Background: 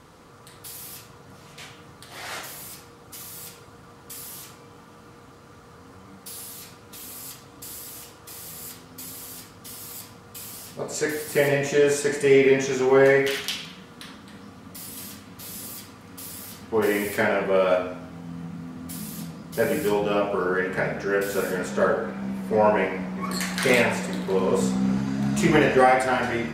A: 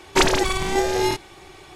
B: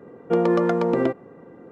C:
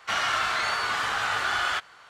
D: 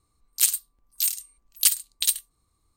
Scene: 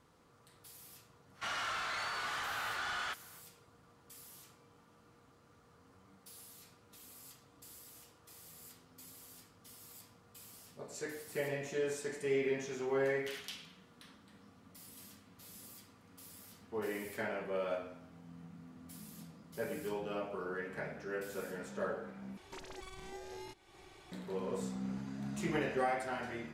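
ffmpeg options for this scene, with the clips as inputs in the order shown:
-filter_complex "[0:a]volume=-16.5dB[a];[3:a]asoftclip=type=tanh:threshold=-23.5dB[b];[1:a]acompressor=threshold=-32dB:ratio=4:attack=0.13:release=279:knee=1:detection=rms[c];[a]asplit=2[d][e];[d]atrim=end=22.374[f];[c]atrim=end=1.75,asetpts=PTS-STARTPTS,volume=-13dB[g];[e]atrim=start=24.116[h];[b]atrim=end=2.09,asetpts=PTS-STARTPTS,volume=-9.5dB,afade=t=in:d=0.05,afade=t=out:st=2.04:d=0.05,adelay=1340[i];[f][g]acrossfade=d=0.004:c1=hsin:c2=hsin[j];[j][h]acrossfade=d=0.004:c1=hsin:c2=hsin[k];[k][i]amix=inputs=2:normalize=0"

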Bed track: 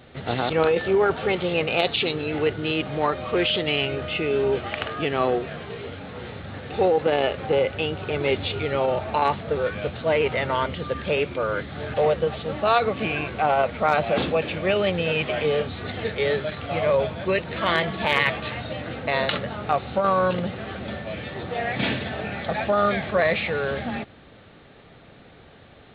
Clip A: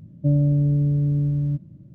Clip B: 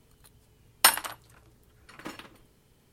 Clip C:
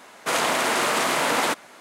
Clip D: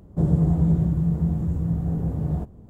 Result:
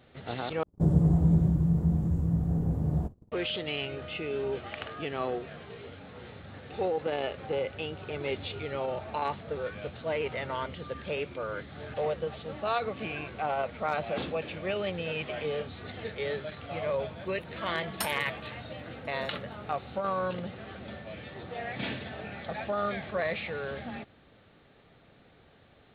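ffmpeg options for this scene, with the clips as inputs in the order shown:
-filter_complex "[0:a]volume=-10dB[a];[4:a]agate=range=-22dB:threshold=-40dB:ratio=3:release=58:detection=rms[b];[a]asplit=2[c][d];[c]atrim=end=0.634[e];[b]atrim=end=2.69,asetpts=PTS-STARTPTS,volume=-3dB[f];[d]atrim=start=3.316[g];[2:a]atrim=end=2.92,asetpts=PTS-STARTPTS,volume=-15.5dB,afade=t=in:d=0.004:c=hsin,afade=t=out:st=2.916:d=0.004:c=hsin,adelay=756756S[h];[e][f]acrossfade=d=0.004:c1=hsin:c2=hsin[i];[i][g]acrossfade=d=0.004:c1=hsin:c2=hsin[j];[j][h]amix=inputs=2:normalize=0"

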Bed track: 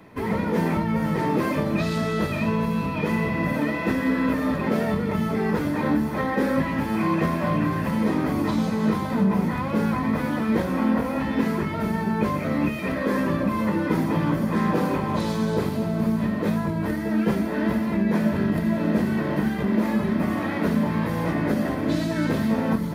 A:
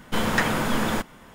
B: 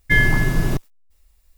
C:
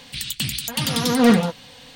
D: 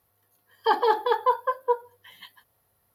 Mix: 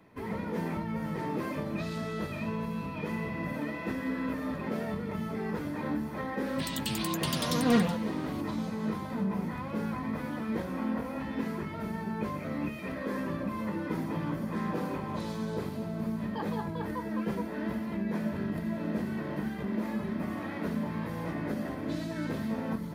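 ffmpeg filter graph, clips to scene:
-filter_complex "[0:a]volume=-10.5dB[a];[3:a]atrim=end=1.95,asetpts=PTS-STARTPTS,volume=-10dB,afade=t=in:d=0.004:c=hsin,afade=t=out:st=1.946:d=0.004:c=hsin,adelay=6460[b];[4:a]atrim=end=2.94,asetpts=PTS-STARTPTS,volume=-17.5dB,afade=t=in:d=0.004:c=hsin,afade=t=out:st=2.936:d=0.004:c=hsin,adelay=15690[c];[a][b][c]amix=inputs=3:normalize=0"

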